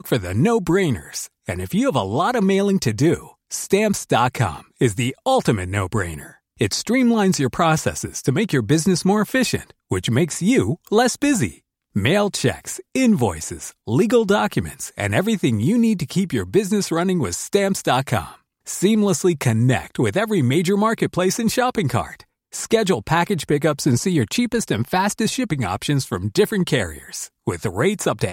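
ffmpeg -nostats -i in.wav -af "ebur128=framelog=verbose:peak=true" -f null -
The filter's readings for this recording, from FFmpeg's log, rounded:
Integrated loudness:
  I:         -20.0 LUFS
  Threshold: -30.2 LUFS
Loudness range:
  LRA:         1.7 LU
  Threshold: -40.1 LUFS
  LRA low:   -20.9 LUFS
  LRA high:  -19.1 LUFS
True peak:
  Peak:       -3.7 dBFS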